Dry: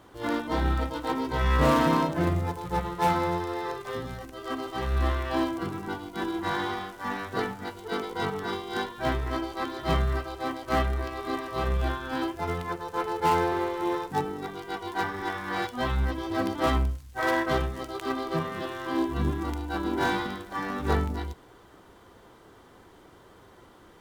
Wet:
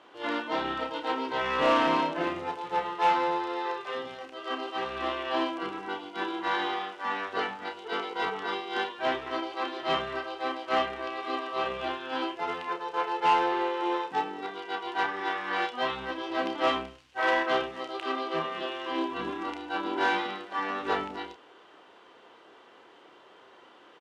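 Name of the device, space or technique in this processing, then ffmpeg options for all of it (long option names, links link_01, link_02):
intercom: -filter_complex "[0:a]highpass=400,lowpass=4500,equalizer=frequency=2800:width_type=o:width=0.39:gain=8,asoftclip=type=tanh:threshold=-16dB,asplit=2[link_01][link_02];[link_02]adelay=31,volume=-7dB[link_03];[link_01][link_03]amix=inputs=2:normalize=0"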